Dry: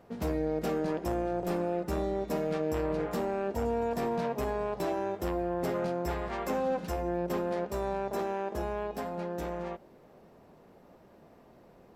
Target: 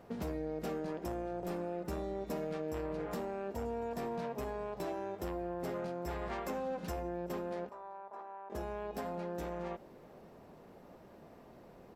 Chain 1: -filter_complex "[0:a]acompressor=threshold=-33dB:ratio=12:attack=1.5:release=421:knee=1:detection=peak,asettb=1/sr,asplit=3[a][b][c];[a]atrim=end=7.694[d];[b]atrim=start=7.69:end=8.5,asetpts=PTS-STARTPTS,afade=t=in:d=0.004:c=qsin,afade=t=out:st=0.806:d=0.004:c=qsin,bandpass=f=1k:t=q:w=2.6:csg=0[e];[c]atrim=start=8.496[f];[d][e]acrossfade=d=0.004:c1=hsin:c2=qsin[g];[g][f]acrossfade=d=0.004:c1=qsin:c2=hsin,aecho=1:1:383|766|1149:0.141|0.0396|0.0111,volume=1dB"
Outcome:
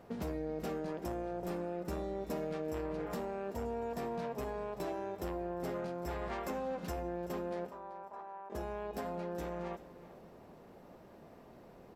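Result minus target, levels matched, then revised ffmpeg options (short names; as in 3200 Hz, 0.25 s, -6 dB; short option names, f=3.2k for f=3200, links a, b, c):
echo-to-direct +12.5 dB
-filter_complex "[0:a]acompressor=threshold=-33dB:ratio=12:attack=1.5:release=421:knee=1:detection=peak,asettb=1/sr,asplit=3[a][b][c];[a]atrim=end=7.694[d];[b]atrim=start=7.69:end=8.5,asetpts=PTS-STARTPTS,afade=t=in:d=0.004:c=qsin,afade=t=out:st=0.806:d=0.004:c=qsin,bandpass=f=1k:t=q:w=2.6:csg=0[e];[c]atrim=start=8.496[f];[d][e]acrossfade=d=0.004:c1=hsin:c2=qsin[g];[g][f]acrossfade=d=0.004:c1=qsin:c2=hsin,aecho=1:1:383:0.0355,volume=1dB"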